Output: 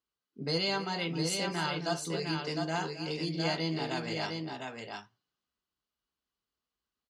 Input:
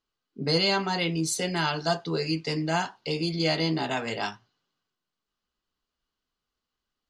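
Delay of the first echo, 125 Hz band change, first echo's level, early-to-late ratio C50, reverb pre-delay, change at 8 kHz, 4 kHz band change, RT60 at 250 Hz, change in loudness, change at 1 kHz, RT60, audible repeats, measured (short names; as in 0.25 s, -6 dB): 0.265 s, -5.5 dB, -14.0 dB, none, none, -5.5 dB, -5.5 dB, none, -6.0 dB, -5.5 dB, none, 2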